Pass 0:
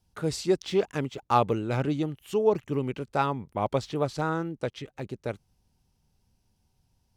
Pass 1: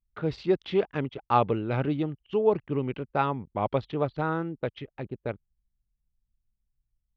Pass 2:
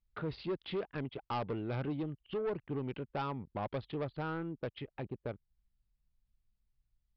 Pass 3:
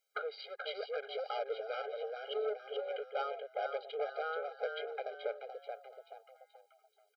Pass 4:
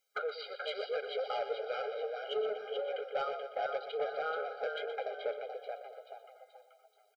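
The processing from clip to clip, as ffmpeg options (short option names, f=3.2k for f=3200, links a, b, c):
-af "lowpass=f=3.6k:w=0.5412,lowpass=f=3.6k:w=1.3066,anlmdn=0.0251"
-af "acompressor=threshold=-42dB:ratio=1.5,aresample=11025,asoftclip=type=tanh:threshold=-30.5dB,aresample=44100"
-filter_complex "[0:a]acompressor=threshold=-53dB:ratio=2.5,asplit=6[a][b][c][d][e][f];[b]adelay=431,afreqshift=130,volume=-6dB[g];[c]adelay=862,afreqshift=260,volume=-13.7dB[h];[d]adelay=1293,afreqshift=390,volume=-21.5dB[i];[e]adelay=1724,afreqshift=520,volume=-29.2dB[j];[f]adelay=2155,afreqshift=650,volume=-37dB[k];[a][g][h][i][j][k]amix=inputs=6:normalize=0,afftfilt=real='re*eq(mod(floor(b*sr/1024/410),2),1)':imag='im*eq(mod(floor(b*sr/1024/410),2),1)':win_size=1024:overlap=0.75,volume=14.5dB"
-filter_complex "[0:a]asoftclip=type=tanh:threshold=-26dB,flanger=delay=3.7:depth=4.5:regen=-51:speed=1:shape=triangular,asplit=2[a][b];[b]aecho=0:1:122|244|366|488|610:0.282|0.144|0.0733|0.0374|0.0191[c];[a][c]amix=inputs=2:normalize=0,volume=6.5dB"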